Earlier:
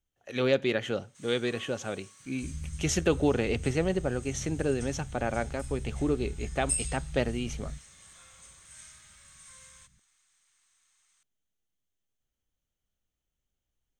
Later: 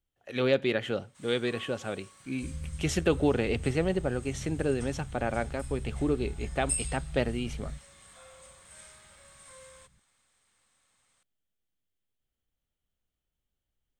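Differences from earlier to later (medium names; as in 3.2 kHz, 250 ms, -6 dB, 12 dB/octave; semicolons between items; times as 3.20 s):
first sound: remove high-pass 1.3 kHz 12 dB/octave; master: add peaking EQ 6.3 kHz -9.5 dB 0.28 oct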